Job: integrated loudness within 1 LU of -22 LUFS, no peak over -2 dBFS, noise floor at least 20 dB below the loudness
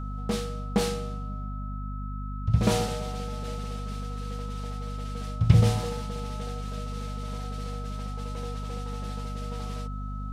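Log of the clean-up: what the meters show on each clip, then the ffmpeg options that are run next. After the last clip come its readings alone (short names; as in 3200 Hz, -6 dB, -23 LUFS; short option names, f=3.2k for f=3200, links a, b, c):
hum 50 Hz; harmonics up to 250 Hz; hum level -32 dBFS; steady tone 1300 Hz; tone level -42 dBFS; loudness -31.0 LUFS; peak -5.5 dBFS; loudness target -22.0 LUFS
-> -af "bandreject=f=50:t=h:w=4,bandreject=f=100:t=h:w=4,bandreject=f=150:t=h:w=4,bandreject=f=200:t=h:w=4,bandreject=f=250:t=h:w=4"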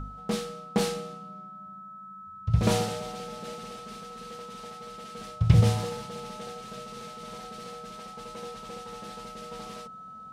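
hum none; steady tone 1300 Hz; tone level -42 dBFS
-> -af "bandreject=f=1.3k:w=30"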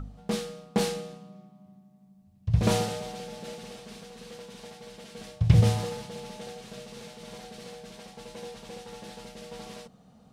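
steady tone none; loudness -29.0 LUFS; peak -7.0 dBFS; loudness target -22.0 LUFS
-> -af "volume=7dB,alimiter=limit=-2dB:level=0:latency=1"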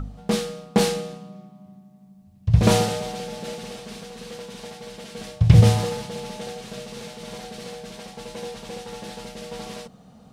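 loudness -22.5 LUFS; peak -2.0 dBFS; noise floor -51 dBFS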